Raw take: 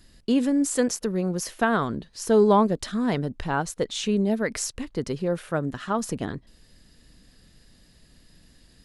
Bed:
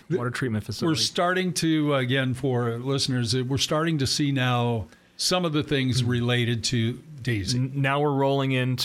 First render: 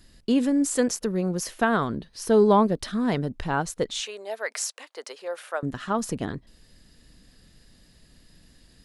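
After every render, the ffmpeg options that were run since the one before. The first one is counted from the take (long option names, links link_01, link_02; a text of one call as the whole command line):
ffmpeg -i in.wav -filter_complex "[0:a]asettb=1/sr,asplit=3[link_01][link_02][link_03];[link_01]atrim=end=1.844[link_04];[link_02]atrim=start=1.84:end=3.06,asetpts=PTS-STARTPTS,afade=type=in:duration=0.004:curve=qsin,afade=type=out:start_time=1.216:duration=0.004:curve=qsin,equalizer=frequency=7200:width=5.7:gain=-7.5[link_05];[link_03]atrim=start=3.056[link_06];[link_04][link_05]acrossfade=duration=0.004:curve1=hsin:curve2=qsin[link_07];[link_07][link_06]acrossfade=duration=0.004:curve1=qsin:curve2=hsin,asettb=1/sr,asplit=3[link_08][link_09][link_10];[link_08]atrim=end=4.004[link_11];[link_09]atrim=start=4:end=5.63,asetpts=PTS-STARTPTS,afade=type=in:duration=0.004:curve=qsin,afade=type=out:start_time=1.626:duration=0.004:curve=qsin,highpass=frequency=570:width=0.5412,highpass=frequency=570:width=1.3066[link_12];[link_10]atrim=start=5.626[link_13];[link_11][link_12]acrossfade=duration=0.004:curve1=hsin:curve2=qsin[link_14];[link_14][link_13]acrossfade=duration=0.004:curve1=qsin:curve2=hsin" out.wav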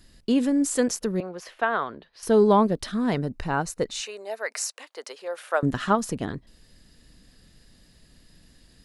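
ffmpeg -i in.wav -filter_complex "[0:a]asettb=1/sr,asplit=3[link_01][link_02][link_03];[link_01]atrim=end=1.204[link_04];[link_02]atrim=start=1.2:end=2.23,asetpts=PTS-STARTPTS,afade=type=in:duration=0.004:curve=qsin,afade=type=out:start_time=1.026:duration=0.004:curve=qsin,acrossover=split=430 3800:gain=0.141 1 0.126[link_05][link_06][link_07];[link_05][link_06][link_07]amix=inputs=3:normalize=0[link_08];[link_03]atrim=start=2.226[link_09];[link_04][link_08]acrossfade=duration=0.004:curve1=hsin:curve2=qsin[link_10];[link_10][link_09]acrossfade=duration=0.004:curve1=qsin:curve2=hsin,asettb=1/sr,asplit=3[link_11][link_12][link_13];[link_11]atrim=end=3.144[link_14];[link_12]atrim=start=3.14:end=4.74,asetpts=PTS-STARTPTS,afade=type=in:duration=0.004:curve=qsin,afade=type=out:start_time=1.596:duration=0.004:curve=qsin,bandreject=frequency=3300:width=6[link_15];[link_13]atrim=start=4.736[link_16];[link_14][link_15]acrossfade=duration=0.004:curve1=hsin:curve2=qsin[link_17];[link_17][link_16]acrossfade=duration=0.004:curve1=qsin:curve2=hsin,asplit=3[link_18][link_19][link_20];[link_18]afade=type=out:start_time=5.5:duration=0.02[link_21];[link_19]acontrast=52,afade=type=in:start_time=5.5:duration=0.02,afade=type=out:start_time=5.94:duration=0.02[link_22];[link_20]afade=type=in:start_time=5.94:duration=0.02[link_23];[link_21][link_22][link_23]amix=inputs=3:normalize=0" out.wav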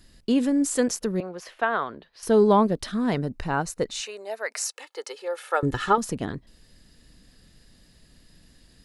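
ffmpeg -i in.wav -filter_complex "[0:a]asettb=1/sr,asplit=3[link_01][link_02][link_03];[link_01]atrim=end=4.654[link_04];[link_02]atrim=start=4.65:end=5.98,asetpts=PTS-STARTPTS,afade=type=in:duration=0.004:curve=qsin,afade=type=out:start_time=1.326:duration=0.004:curve=qsin,aecho=1:1:2.3:0.65,atrim=end_sample=58653[link_05];[link_03]atrim=start=5.976[link_06];[link_04][link_05]acrossfade=duration=0.004:curve1=hsin:curve2=qsin[link_07];[link_07][link_06]acrossfade=duration=0.004:curve1=qsin:curve2=hsin" out.wav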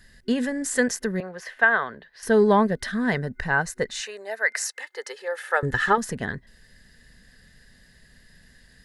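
ffmpeg -i in.wav -af "superequalizer=6b=0.398:11b=3.55" out.wav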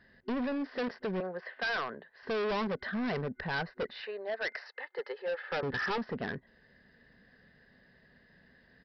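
ffmpeg -i in.wav -af "bandpass=frequency=550:width_type=q:width=0.57:csg=0,aresample=11025,asoftclip=type=hard:threshold=-30.5dB,aresample=44100" out.wav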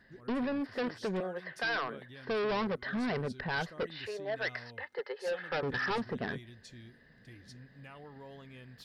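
ffmpeg -i in.wav -i bed.wav -filter_complex "[1:a]volume=-27.5dB[link_01];[0:a][link_01]amix=inputs=2:normalize=0" out.wav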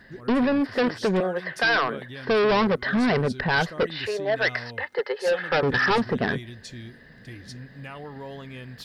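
ffmpeg -i in.wav -af "volume=11.5dB" out.wav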